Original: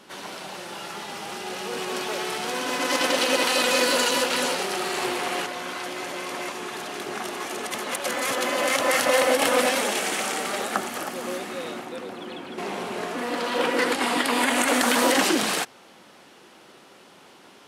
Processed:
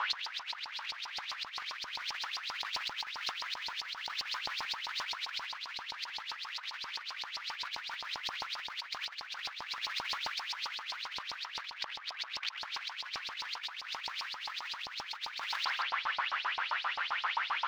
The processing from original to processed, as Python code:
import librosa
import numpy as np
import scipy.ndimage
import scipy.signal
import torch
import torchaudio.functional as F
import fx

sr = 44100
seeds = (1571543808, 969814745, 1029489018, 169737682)

y = fx.rattle_buzz(x, sr, strikes_db=-36.0, level_db=-21.0)
y = 10.0 ** (-23.5 / 20.0) * np.tanh(y / 10.0 ** (-23.5 / 20.0))
y = fx.high_shelf(y, sr, hz=5800.0, db=-6.5)
y = (np.mod(10.0 ** (33.5 / 20.0) * y + 1.0, 2.0) - 1.0) / 10.0 ** (33.5 / 20.0)
y = scipy.signal.sosfilt(scipy.signal.butter(2, 610.0, 'highpass', fs=sr, output='sos'), y)
y = fx.filter_lfo_highpass(y, sr, shape='saw_up', hz=7.6, low_hz=870.0, high_hz=5400.0, q=7.0)
y = fx.air_absorb(y, sr, metres=260.0)
y = y + 10.0 ** (-16.0 / 20.0) * np.pad(y, (int(175 * sr / 1000.0), 0))[:len(y)]
y = fx.over_compress(y, sr, threshold_db=-45.0, ratio=-0.5)
y = F.gain(torch.from_numpy(y), 7.5).numpy()